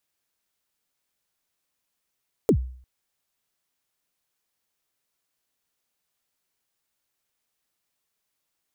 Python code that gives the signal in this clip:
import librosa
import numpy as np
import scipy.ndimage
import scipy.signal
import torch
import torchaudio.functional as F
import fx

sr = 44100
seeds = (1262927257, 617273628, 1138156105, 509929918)

y = fx.drum_kick(sr, seeds[0], length_s=0.35, level_db=-12, start_hz=510.0, end_hz=63.0, sweep_ms=79.0, decay_s=0.53, click=True)